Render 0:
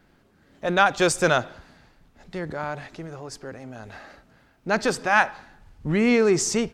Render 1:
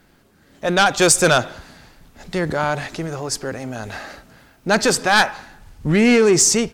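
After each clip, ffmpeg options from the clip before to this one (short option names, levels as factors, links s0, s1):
-af "dynaudnorm=f=230:g=7:m=2,aeval=exprs='0.841*sin(PI/2*2.24*val(0)/0.841)':c=same,aemphasis=mode=production:type=cd,volume=0.473"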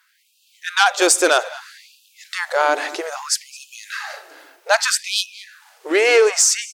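-filter_complex "[0:a]dynaudnorm=f=140:g=3:m=2.11,asplit=2[s0][s1];[s1]adelay=215.7,volume=0.126,highshelf=f=4000:g=-4.85[s2];[s0][s2]amix=inputs=2:normalize=0,afftfilt=real='re*gte(b*sr/1024,260*pow(2500/260,0.5+0.5*sin(2*PI*0.62*pts/sr)))':imag='im*gte(b*sr/1024,260*pow(2500/260,0.5+0.5*sin(2*PI*0.62*pts/sr)))':win_size=1024:overlap=0.75,volume=0.891"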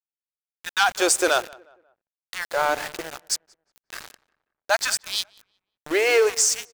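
-filter_complex "[0:a]aeval=exprs='val(0)*gte(abs(val(0)),0.0668)':c=same,asplit=2[s0][s1];[s1]adelay=180,lowpass=f=2000:p=1,volume=0.0708,asplit=2[s2][s3];[s3]adelay=180,lowpass=f=2000:p=1,volume=0.4,asplit=2[s4][s5];[s5]adelay=180,lowpass=f=2000:p=1,volume=0.4[s6];[s0][s2][s4][s6]amix=inputs=4:normalize=0,volume=0.562"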